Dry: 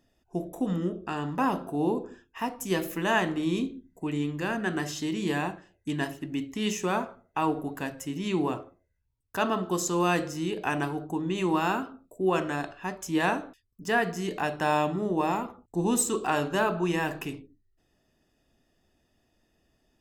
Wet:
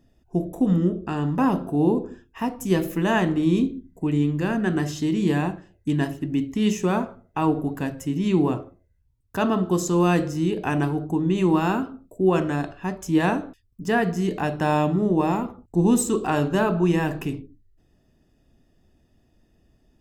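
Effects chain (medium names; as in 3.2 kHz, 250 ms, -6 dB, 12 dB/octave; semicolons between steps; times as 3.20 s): bass shelf 380 Hz +12 dB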